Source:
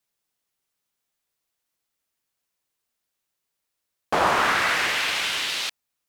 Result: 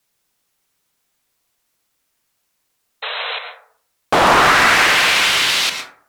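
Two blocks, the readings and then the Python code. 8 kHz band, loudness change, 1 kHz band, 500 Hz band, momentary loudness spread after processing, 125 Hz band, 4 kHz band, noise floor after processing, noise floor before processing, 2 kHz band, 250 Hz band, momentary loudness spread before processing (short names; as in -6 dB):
+10.5 dB, +9.0 dB, +9.5 dB, +9.0 dB, 15 LU, +11.0 dB, +10.5 dB, -70 dBFS, -81 dBFS, +10.0 dB, +10.5 dB, 8 LU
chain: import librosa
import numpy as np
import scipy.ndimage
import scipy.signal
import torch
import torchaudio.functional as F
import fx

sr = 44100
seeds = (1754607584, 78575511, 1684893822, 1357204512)

y = fx.fold_sine(x, sr, drive_db=8, ceiling_db=-7.0)
y = fx.spec_paint(y, sr, seeds[0], shape='noise', start_s=3.02, length_s=0.37, low_hz=430.0, high_hz=4100.0, level_db=-24.0)
y = fx.rev_plate(y, sr, seeds[1], rt60_s=0.53, hf_ratio=0.4, predelay_ms=100, drr_db=6.0)
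y = y * 10.0 ** (-1.0 / 20.0)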